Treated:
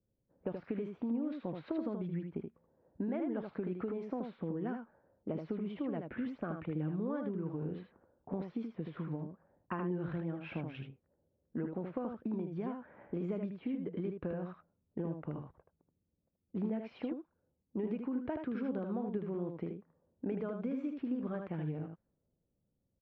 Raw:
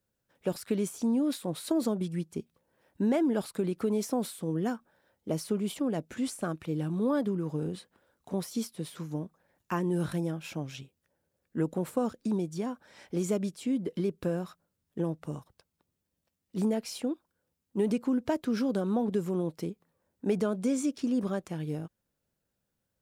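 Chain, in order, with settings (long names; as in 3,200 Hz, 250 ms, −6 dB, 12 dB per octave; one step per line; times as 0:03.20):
downward compressor 5 to 1, threshold −38 dBFS, peak gain reduction 14 dB
low-pass that shuts in the quiet parts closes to 470 Hz, open at −37 dBFS
low-pass filter 2,500 Hz 24 dB per octave
single-tap delay 78 ms −5.5 dB
one half of a high-frequency compander decoder only
level +2 dB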